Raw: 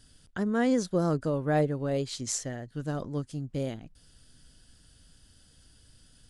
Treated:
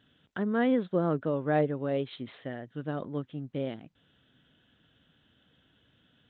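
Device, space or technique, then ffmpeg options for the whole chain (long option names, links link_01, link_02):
Bluetooth headset: -af "highpass=160,aresample=8000,aresample=44100" -ar 16000 -c:a sbc -b:a 64k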